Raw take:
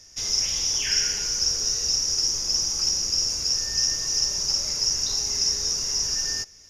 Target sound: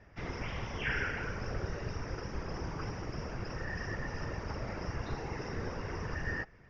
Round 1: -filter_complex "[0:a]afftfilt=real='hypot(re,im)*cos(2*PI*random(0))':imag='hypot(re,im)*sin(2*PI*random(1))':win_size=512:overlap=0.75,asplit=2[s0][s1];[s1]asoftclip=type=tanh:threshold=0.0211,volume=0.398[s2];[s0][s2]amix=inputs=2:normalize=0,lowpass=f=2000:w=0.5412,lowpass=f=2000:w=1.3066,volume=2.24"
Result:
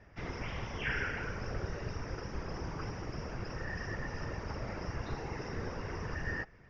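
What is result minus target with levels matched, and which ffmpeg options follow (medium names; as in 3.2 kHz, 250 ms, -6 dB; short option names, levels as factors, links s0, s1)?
saturation: distortion +9 dB
-filter_complex "[0:a]afftfilt=real='hypot(re,im)*cos(2*PI*random(0))':imag='hypot(re,im)*sin(2*PI*random(1))':win_size=512:overlap=0.75,asplit=2[s0][s1];[s1]asoftclip=type=tanh:threshold=0.0668,volume=0.398[s2];[s0][s2]amix=inputs=2:normalize=0,lowpass=f=2000:w=0.5412,lowpass=f=2000:w=1.3066,volume=2.24"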